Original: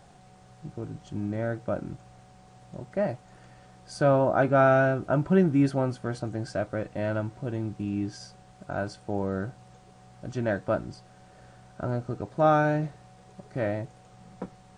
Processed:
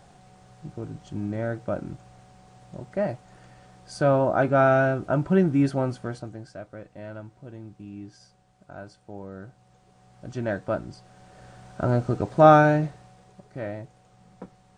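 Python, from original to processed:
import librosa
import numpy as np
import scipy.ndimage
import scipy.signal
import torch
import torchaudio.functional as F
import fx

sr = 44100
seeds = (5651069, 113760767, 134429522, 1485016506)

y = fx.gain(x, sr, db=fx.line((6.0, 1.0), (6.51, -10.0), (9.35, -10.0), (10.38, -0.5), (10.91, -0.5), (11.99, 7.5), (12.51, 7.5), (13.5, -4.5)))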